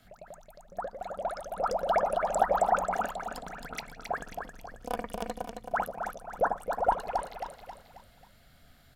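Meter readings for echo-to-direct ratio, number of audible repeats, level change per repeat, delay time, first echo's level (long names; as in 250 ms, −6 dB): −5.0 dB, 4, −7.5 dB, 269 ms, −6.0 dB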